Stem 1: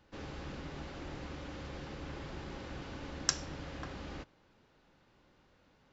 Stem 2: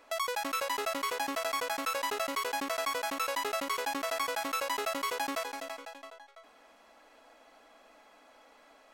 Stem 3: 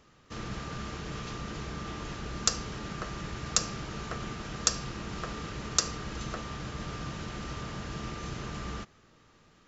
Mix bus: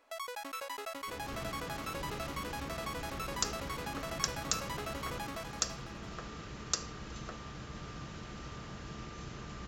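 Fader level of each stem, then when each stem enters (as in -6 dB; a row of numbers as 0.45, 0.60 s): -3.0, -8.5, -7.0 dB; 0.95, 0.00, 0.95 s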